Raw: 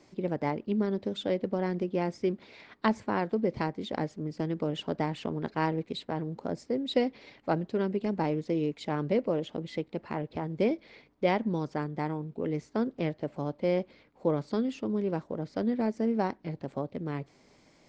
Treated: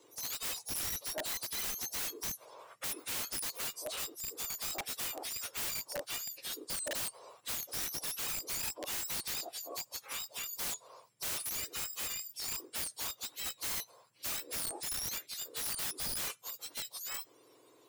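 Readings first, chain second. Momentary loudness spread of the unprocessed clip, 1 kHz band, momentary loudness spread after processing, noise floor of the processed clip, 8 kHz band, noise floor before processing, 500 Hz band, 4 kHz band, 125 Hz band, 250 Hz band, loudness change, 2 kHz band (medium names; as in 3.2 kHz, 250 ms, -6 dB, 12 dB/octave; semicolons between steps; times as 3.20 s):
7 LU, -13.0 dB, 6 LU, -64 dBFS, no reading, -62 dBFS, -18.5 dB, +5.0 dB, -21.5 dB, -25.0 dB, -5.0 dB, -3.0 dB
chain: spectrum inverted on a logarithmic axis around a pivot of 1.5 kHz; integer overflow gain 31.5 dB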